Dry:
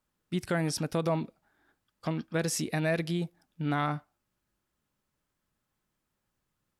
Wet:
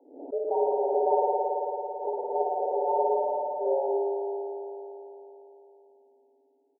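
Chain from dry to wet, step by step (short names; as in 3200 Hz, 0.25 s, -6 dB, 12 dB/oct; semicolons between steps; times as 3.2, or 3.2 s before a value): Wiener smoothing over 41 samples; frequency shift +250 Hz; FFT band-pass 110–950 Hz; on a send: echo 0.451 s -18 dB; on the sum: spring tank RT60 3.6 s, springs 55 ms, chirp 60 ms, DRR -5 dB; backwards sustainer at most 97 dB/s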